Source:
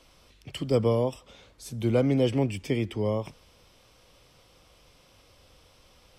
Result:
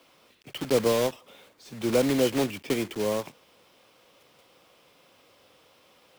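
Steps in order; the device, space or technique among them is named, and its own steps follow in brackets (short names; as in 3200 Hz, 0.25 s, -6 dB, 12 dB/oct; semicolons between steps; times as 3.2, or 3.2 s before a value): early digital voice recorder (BPF 220–3900 Hz; block floating point 3-bit); gain +1.5 dB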